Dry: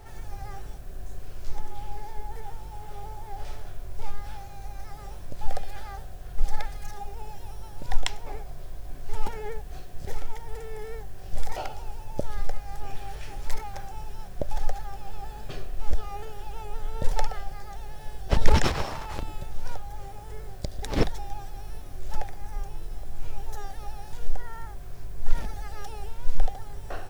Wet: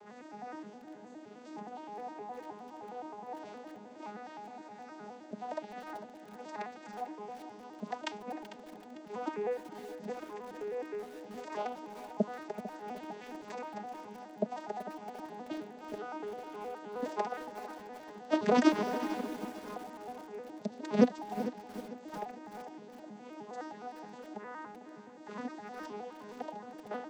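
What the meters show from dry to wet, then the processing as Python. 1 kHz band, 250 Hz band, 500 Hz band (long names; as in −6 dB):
−2.0 dB, +5.5 dB, +1.5 dB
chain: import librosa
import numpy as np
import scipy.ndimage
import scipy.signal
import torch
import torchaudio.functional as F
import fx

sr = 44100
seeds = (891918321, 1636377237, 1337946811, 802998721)

p1 = fx.vocoder_arp(x, sr, chord='minor triad', root=56, every_ms=104)
p2 = p1 + fx.echo_feedback(p1, sr, ms=448, feedback_pct=38, wet_db=-14, dry=0)
p3 = fx.echo_crushed(p2, sr, ms=381, feedback_pct=55, bits=7, wet_db=-14)
y = F.gain(torch.from_numpy(p3), 1.0).numpy()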